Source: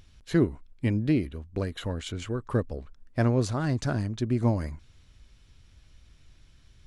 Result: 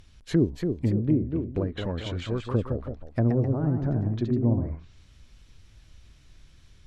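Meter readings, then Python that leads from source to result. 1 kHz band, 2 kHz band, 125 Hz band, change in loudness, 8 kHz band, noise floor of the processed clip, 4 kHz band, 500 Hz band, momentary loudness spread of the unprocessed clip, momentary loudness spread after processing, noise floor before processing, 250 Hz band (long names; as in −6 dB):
−3.5 dB, −5.5 dB, +2.5 dB, +1.5 dB, can't be measured, −55 dBFS, −1.0 dB, +1.0 dB, 10 LU, 8 LU, −58 dBFS, +2.0 dB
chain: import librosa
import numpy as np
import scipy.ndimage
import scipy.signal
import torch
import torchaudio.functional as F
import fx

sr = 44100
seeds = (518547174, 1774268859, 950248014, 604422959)

y = fx.env_lowpass_down(x, sr, base_hz=450.0, full_db=-22.5)
y = fx.echo_pitch(y, sr, ms=304, semitones=1, count=2, db_per_echo=-6.0)
y = F.gain(torch.from_numpy(y), 1.5).numpy()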